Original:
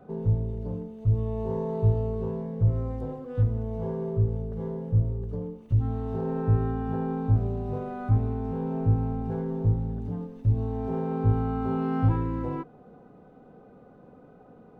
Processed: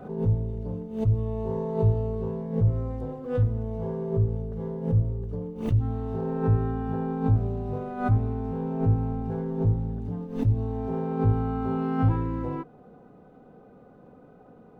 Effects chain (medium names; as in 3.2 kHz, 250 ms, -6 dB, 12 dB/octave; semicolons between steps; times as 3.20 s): swell ahead of each attack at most 110 dB/s